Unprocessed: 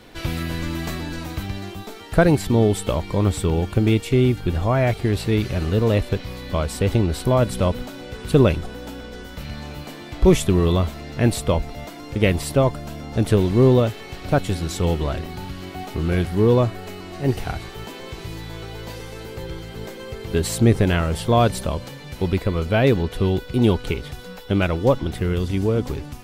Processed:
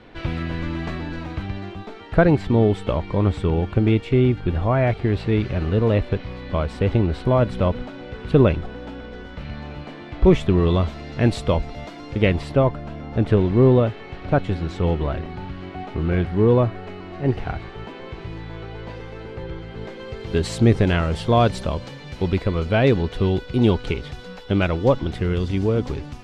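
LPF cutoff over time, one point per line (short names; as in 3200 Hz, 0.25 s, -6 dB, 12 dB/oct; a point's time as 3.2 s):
10.45 s 2800 Hz
10.93 s 4800 Hz
12.03 s 4800 Hz
12.65 s 2500 Hz
19.66 s 2500 Hz
20.35 s 5400 Hz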